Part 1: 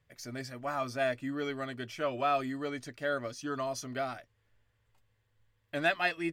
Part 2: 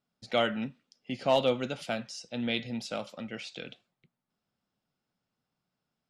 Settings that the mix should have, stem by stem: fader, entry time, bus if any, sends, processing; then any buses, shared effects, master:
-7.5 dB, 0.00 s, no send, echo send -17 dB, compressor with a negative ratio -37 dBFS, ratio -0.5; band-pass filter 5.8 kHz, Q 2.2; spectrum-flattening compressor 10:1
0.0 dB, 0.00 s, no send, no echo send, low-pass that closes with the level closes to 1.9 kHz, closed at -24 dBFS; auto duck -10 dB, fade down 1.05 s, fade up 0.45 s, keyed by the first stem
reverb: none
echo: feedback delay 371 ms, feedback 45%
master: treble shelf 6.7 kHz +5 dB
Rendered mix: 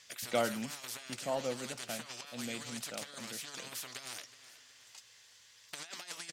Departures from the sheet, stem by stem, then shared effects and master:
stem 1 -7.5 dB -> 0.0 dB; master: missing treble shelf 6.7 kHz +5 dB

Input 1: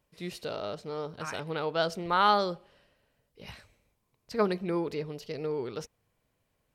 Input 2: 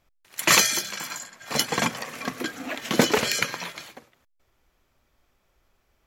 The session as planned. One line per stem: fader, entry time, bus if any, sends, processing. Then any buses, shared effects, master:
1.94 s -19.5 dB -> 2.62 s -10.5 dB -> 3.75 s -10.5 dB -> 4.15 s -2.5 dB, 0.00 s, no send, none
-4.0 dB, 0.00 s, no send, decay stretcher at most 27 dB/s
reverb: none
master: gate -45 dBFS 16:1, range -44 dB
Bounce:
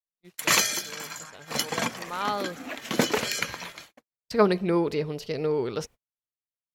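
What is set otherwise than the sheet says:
stem 1 -19.5 dB -> -10.5 dB; stem 2: missing decay stretcher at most 27 dB/s

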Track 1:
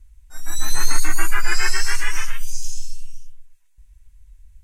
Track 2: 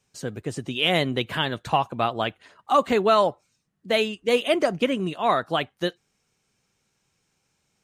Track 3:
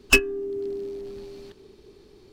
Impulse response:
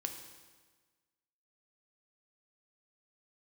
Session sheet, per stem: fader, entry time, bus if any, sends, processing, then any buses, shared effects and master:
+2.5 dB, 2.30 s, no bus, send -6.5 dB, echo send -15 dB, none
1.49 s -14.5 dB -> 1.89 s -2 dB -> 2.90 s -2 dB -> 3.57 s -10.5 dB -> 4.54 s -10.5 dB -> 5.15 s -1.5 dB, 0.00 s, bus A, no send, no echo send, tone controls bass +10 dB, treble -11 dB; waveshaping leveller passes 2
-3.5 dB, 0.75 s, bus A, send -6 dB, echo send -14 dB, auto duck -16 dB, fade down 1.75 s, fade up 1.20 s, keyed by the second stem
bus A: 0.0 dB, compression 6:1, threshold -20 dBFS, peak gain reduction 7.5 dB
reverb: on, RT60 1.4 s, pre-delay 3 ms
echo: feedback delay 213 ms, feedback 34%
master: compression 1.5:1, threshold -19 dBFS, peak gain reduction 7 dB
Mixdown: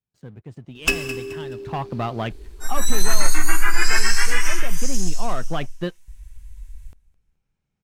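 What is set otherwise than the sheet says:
stem 2 -14.5 dB -> -20.5 dB; reverb return +7.5 dB

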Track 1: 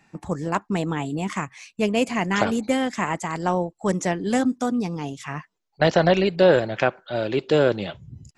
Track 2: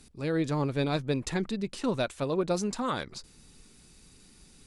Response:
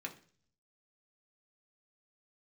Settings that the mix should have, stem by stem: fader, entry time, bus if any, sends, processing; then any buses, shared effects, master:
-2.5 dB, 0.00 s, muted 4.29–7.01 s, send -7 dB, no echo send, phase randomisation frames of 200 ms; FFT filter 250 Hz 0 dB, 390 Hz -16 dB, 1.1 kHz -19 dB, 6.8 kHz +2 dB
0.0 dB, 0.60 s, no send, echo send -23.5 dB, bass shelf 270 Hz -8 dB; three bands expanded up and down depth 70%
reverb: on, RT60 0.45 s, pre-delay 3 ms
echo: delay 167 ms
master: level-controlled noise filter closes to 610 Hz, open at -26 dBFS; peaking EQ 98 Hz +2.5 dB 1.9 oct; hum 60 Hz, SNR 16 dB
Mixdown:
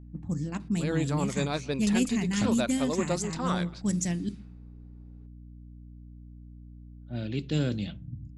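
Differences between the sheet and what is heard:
stem 1: missing phase randomisation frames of 200 ms; stem 2: missing three bands expanded up and down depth 70%

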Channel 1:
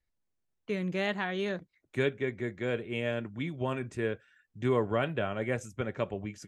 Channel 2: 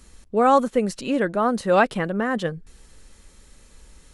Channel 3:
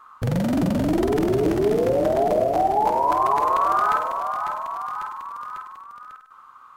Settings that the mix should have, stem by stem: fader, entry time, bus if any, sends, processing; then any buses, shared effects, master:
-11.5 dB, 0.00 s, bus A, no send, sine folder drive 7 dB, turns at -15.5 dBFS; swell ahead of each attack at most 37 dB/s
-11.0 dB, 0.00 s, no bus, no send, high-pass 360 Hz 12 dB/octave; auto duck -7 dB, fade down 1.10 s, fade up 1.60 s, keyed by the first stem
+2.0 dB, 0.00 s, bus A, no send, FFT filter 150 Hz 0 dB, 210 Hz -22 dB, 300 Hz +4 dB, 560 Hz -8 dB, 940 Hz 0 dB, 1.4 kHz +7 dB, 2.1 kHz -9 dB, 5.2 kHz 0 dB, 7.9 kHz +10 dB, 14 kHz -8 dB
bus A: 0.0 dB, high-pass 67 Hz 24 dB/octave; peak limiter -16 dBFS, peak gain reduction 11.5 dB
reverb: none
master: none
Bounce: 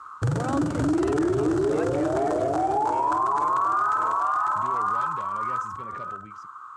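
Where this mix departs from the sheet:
stem 1 -11.5 dB -> -20.5 dB; master: extra distance through air 54 m

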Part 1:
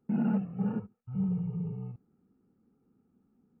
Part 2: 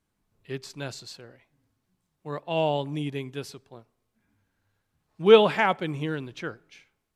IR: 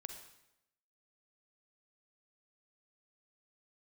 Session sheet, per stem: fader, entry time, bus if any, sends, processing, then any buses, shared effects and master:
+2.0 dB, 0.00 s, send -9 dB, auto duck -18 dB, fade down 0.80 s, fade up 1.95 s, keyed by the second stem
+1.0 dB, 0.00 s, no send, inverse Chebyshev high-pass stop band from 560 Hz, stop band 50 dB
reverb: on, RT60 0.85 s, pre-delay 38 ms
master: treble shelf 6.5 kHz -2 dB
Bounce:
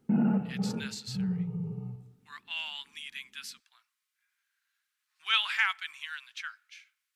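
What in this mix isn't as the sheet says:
stem 1: send -9 dB -> -0.5 dB; master: missing treble shelf 6.5 kHz -2 dB

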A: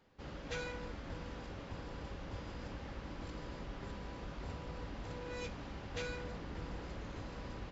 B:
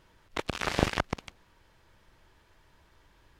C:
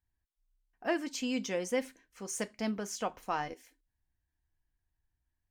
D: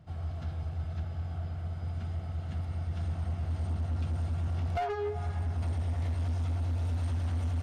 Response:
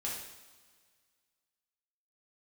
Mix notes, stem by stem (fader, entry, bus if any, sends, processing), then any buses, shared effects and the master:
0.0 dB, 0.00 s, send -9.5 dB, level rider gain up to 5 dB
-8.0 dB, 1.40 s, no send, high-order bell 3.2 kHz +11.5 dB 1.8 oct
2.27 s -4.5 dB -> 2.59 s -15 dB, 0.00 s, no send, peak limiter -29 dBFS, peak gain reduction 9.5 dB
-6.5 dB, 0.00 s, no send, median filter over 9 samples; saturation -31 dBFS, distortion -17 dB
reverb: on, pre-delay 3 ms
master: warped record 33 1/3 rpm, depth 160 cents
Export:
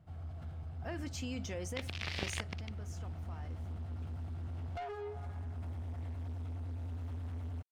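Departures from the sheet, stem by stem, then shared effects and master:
stem A: muted; stem B -8.0 dB -> -16.5 dB; reverb: off; master: missing warped record 33 1/3 rpm, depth 160 cents

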